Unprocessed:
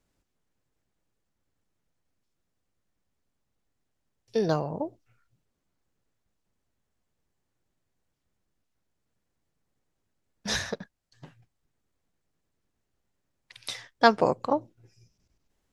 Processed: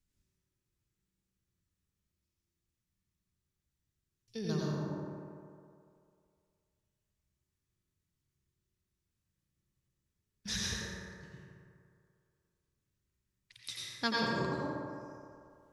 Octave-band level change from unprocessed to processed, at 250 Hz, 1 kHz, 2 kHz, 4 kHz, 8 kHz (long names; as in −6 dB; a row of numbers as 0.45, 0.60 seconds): −5.5, −12.5, −6.5, −3.5, −2.0 decibels